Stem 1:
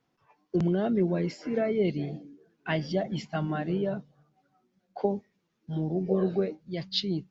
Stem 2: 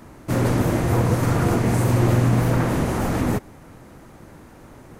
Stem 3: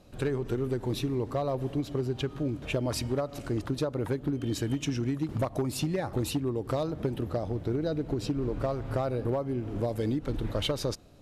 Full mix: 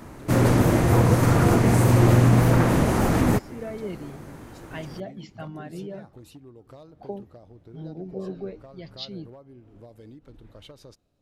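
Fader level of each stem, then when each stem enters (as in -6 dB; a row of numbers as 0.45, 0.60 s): -7.5, +1.5, -17.0 dB; 2.05, 0.00, 0.00 s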